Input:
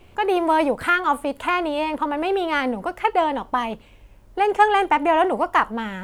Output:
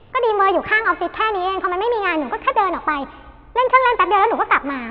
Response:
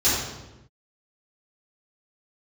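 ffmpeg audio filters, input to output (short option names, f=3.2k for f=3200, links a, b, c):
-filter_complex "[0:a]lowpass=f=2.4k:w=0.5412,lowpass=f=2.4k:w=1.3066,asetrate=54243,aresample=44100,asplit=2[a][b];[1:a]atrim=start_sample=2205,asetrate=25137,aresample=44100,adelay=131[c];[b][c]afir=irnorm=-1:irlink=0,volume=-40dB[d];[a][d]amix=inputs=2:normalize=0,volume=3dB"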